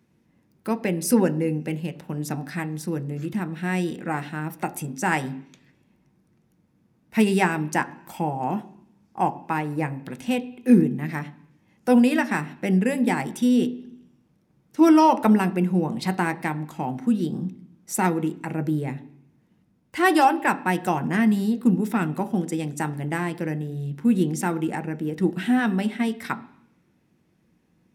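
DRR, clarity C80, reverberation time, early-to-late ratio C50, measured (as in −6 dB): 11.0 dB, 21.0 dB, 0.70 s, 19.0 dB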